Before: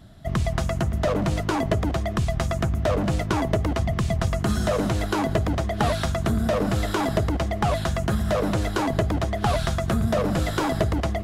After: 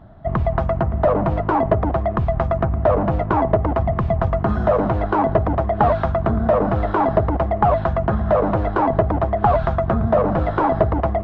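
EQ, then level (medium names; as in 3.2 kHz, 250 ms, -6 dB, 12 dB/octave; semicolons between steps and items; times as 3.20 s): tape spacing loss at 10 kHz 41 dB; bass shelf 140 Hz +5.5 dB; peaking EQ 890 Hz +14.5 dB 2.1 oct; -1.0 dB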